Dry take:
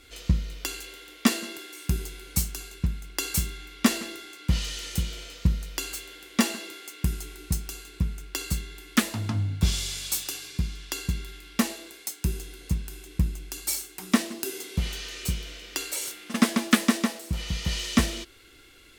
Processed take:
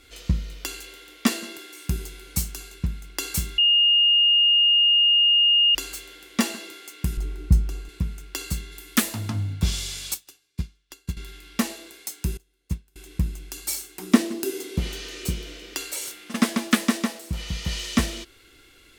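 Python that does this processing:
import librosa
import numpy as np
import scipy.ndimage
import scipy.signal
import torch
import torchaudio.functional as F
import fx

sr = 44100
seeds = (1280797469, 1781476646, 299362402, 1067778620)

y = fx.tilt_eq(x, sr, slope=-3.0, at=(7.17, 7.89))
y = fx.high_shelf(y, sr, hz=fx.line((8.71, 6900.0), (9.53, 11000.0)), db=10.5, at=(8.71, 9.53), fade=0.02)
y = fx.upward_expand(y, sr, threshold_db=-42.0, expansion=2.5, at=(10.14, 11.17))
y = fx.upward_expand(y, sr, threshold_db=-39.0, expansion=2.5, at=(12.37, 12.96))
y = fx.peak_eq(y, sr, hz=330.0, db=9.0, octaves=1.2, at=(13.98, 15.74))
y = fx.edit(y, sr, fx.bleep(start_s=3.58, length_s=2.17, hz=2840.0, db=-14.5), tone=tone)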